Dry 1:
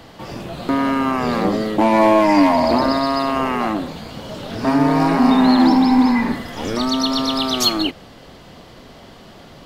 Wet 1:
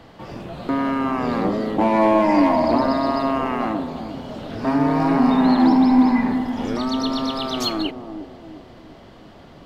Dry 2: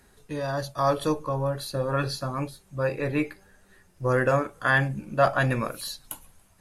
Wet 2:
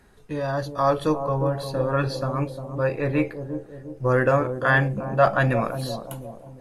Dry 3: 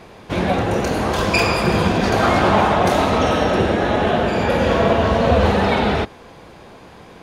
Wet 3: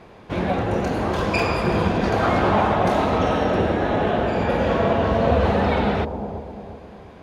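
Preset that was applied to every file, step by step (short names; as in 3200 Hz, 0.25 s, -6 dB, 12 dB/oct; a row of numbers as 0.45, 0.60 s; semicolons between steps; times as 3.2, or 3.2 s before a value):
high shelf 4100 Hz -10 dB; on a send: analogue delay 0.352 s, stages 2048, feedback 46%, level -8.5 dB; on the sum: normalise peaks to -6 dBFS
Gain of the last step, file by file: -3.0, +3.0, -3.5 dB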